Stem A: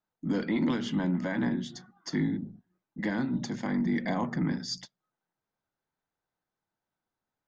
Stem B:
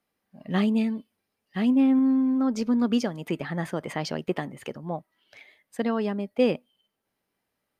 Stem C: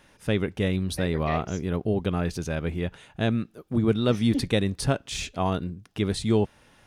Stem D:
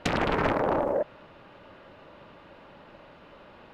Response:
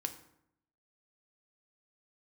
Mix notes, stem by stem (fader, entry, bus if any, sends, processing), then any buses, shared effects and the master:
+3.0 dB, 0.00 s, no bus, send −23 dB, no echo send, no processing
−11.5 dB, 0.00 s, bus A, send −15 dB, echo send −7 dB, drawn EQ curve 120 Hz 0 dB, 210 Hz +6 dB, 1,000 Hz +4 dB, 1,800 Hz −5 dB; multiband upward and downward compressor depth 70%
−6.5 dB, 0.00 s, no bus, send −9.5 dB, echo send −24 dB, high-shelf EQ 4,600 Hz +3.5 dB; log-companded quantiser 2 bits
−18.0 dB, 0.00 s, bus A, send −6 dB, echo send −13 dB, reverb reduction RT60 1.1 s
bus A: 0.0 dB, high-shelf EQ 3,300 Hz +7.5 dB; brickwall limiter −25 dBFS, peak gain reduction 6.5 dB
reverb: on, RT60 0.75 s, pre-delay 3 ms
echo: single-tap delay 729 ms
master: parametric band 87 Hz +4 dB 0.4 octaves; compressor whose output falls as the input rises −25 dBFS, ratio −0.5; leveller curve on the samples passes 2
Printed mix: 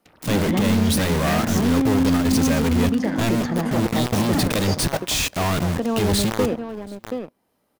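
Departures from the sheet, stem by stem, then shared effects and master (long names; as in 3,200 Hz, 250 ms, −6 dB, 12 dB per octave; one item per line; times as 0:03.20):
stem A +3.0 dB → −8.0 dB
stem D −18.0 dB → −28.5 dB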